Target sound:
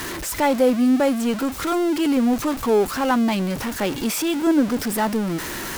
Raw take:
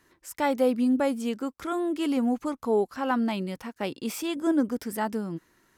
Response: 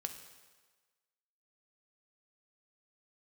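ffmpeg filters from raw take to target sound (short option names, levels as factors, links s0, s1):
-af "aeval=exprs='val(0)+0.5*0.0376*sgn(val(0))':c=same,volume=1.68"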